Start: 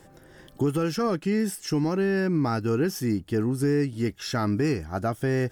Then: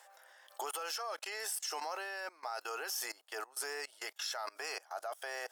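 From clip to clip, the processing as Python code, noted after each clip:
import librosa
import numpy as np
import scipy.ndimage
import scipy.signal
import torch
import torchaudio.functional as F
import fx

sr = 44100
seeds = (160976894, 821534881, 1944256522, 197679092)

y = scipy.signal.sosfilt(scipy.signal.butter(6, 640.0, 'highpass', fs=sr, output='sos'), x)
y = fx.level_steps(y, sr, step_db=23)
y = fx.dynamic_eq(y, sr, hz=1900.0, q=1.1, threshold_db=-59.0, ratio=4.0, max_db=-6)
y = y * 10.0 ** (8.5 / 20.0)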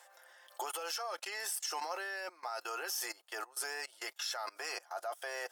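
y = x + 0.42 * np.pad(x, (int(5.7 * sr / 1000.0), 0))[:len(x)]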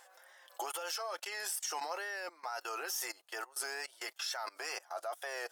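y = fx.wow_flutter(x, sr, seeds[0], rate_hz=2.1, depth_cents=73.0)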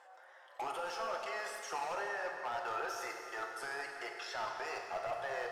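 y = fx.bandpass_q(x, sr, hz=750.0, q=0.63)
y = np.clip(y, -10.0 ** (-37.5 / 20.0), 10.0 ** (-37.5 / 20.0))
y = fx.rev_plate(y, sr, seeds[1], rt60_s=2.8, hf_ratio=0.75, predelay_ms=0, drr_db=1.0)
y = y * 10.0 ** (2.5 / 20.0)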